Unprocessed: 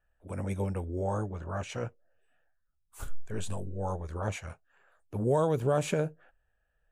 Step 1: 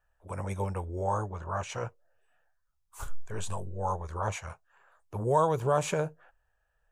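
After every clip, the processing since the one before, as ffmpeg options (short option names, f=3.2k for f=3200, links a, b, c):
-af "equalizer=f=250:t=o:w=0.67:g=-9,equalizer=f=1k:t=o:w=0.67:g=9,equalizer=f=6.3k:t=o:w=0.67:g=4"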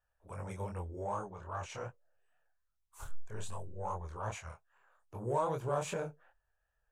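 -filter_complex "[0:a]flanger=delay=22.5:depth=6.6:speed=2.5,asplit=2[a][b];[b]asoftclip=type=tanh:threshold=-30.5dB,volume=-11dB[c];[a][c]amix=inputs=2:normalize=0,volume=-6dB"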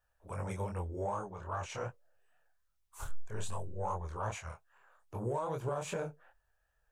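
-af "alimiter=level_in=6.5dB:limit=-24dB:level=0:latency=1:release=409,volume=-6.5dB,volume=4dB"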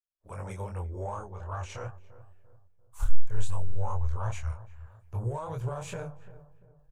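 -filter_complex "[0:a]asubboost=boost=11:cutoff=78,agate=range=-33dB:threshold=-52dB:ratio=3:detection=peak,asplit=2[a][b];[b]adelay=344,lowpass=f=990:p=1,volume=-15dB,asplit=2[c][d];[d]adelay=344,lowpass=f=990:p=1,volume=0.43,asplit=2[e][f];[f]adelay=344,lowpass=f=990:p=1,volume=0.43,asplit=2[g][h];[h]adelay=344,lowpass=f=990:p=1,volume=0.43[i];[a][c][e][g][i]amix=inputs=5:normalize=0"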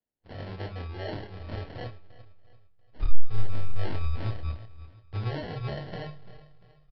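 -filter_complex "[0:a]acrusher=samples=36:mix=1:aa=0.000001,asplit=2[a][b];[b]adelay=28,volume=-9dB[c];[a][c]amix=inputs=2:normalize=0,aresample=11025,aresample=44100"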